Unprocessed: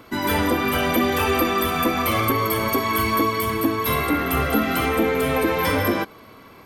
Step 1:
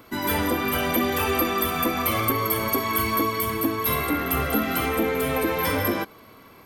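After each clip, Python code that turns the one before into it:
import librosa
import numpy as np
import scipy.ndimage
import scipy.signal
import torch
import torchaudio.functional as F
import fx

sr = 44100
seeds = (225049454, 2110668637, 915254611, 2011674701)

y = fx.high_shelf(x, sr, hz=11000.0, db=9.5)
y = F.gain(torch.from_numpy(y), -3.5).numpy()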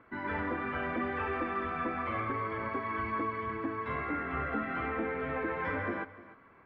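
y = fx.ladder_lowpass(x, sr, hz=2100.0, resonance_pct=45)
y = y + 10.0 ** (-17.5 / 20.0) * np.pad(y, (int(300 * sr / 1000.0), 0))[:len(y)]
y = F.gain(torch.from_numpy(y), -2.5).numpy()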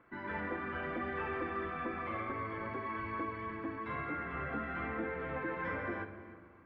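y = fx.room_shoebox(x, sr, seeds[0], volume_m3=2000.0, walls='mixed', distance_m=0.87)
y = F.gain(torch.from_numpy(y), -5.0).numpy()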